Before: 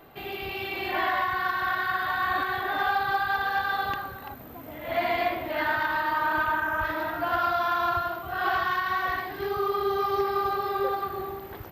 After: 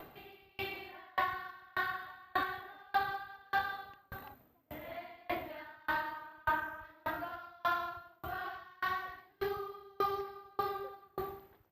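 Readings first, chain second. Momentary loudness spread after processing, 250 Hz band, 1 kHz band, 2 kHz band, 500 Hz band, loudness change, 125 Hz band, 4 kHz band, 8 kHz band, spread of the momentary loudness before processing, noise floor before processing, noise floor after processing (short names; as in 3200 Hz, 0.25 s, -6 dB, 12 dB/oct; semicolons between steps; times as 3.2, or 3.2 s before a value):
12 LU, -11.5 dB, -11.5 dB, -12.0 dB, -12.5 dB, -11.5 dB, -11.5 dB, -12.0 dB, n/a, 9 LU, -42 dBFS, -68 dBFS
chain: upward compressor, threshold -41 dBFS; dB-ramp tremolo decaying 1.7 Hz, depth 34 dB; gain -2.5 dB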